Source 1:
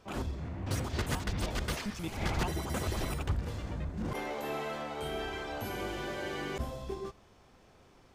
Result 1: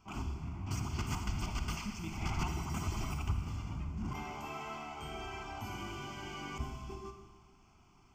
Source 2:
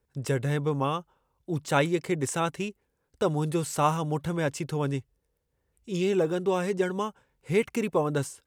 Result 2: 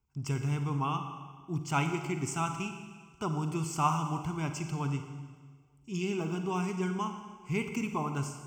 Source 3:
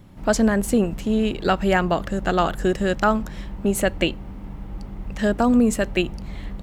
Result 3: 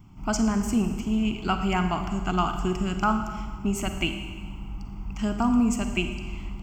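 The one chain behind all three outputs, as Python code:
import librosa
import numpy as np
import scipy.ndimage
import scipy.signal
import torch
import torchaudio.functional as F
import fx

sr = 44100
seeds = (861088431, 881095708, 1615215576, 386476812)

y = fx.fixed_phaser(x, sr, hz=2600.0, stages=8)
y = fx.echo_bbd(y, sr, ms=301, stages=2048, feedback_pct=41, wet_db=-21.5)
y = fx.rev_schroeder(y, sr, rt60_s=1.5, comb_ms=38, drr_db=6.5)
y = y * 10.0 ** (-2.0 / 20.0)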